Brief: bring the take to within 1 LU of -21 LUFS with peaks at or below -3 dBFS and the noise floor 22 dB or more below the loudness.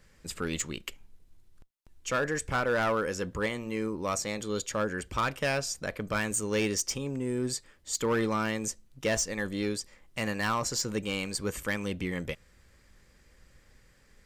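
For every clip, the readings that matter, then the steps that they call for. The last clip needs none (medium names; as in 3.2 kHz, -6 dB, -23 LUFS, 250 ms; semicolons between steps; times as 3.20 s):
clipped samples 0.9%; clipping level -22.0 dBFS; loudness -31.5 LUFS; peak level -22.0 dBFS; loudness target -21.0 LUFS
-> clip repair -22 dBFS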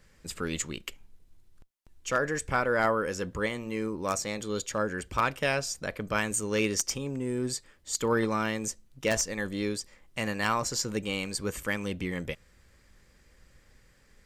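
clipped samples 0.0%; loudness -30.5 LUFS; peak level -13.0 dBFS; loudness target -21.0 LUFS
-> trim +9.5 dB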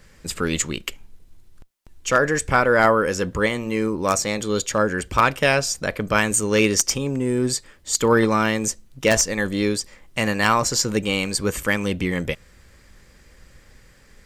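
loudness -21.0 LUFS; peak level -3.5 dBFS; noise floor -52 dBFS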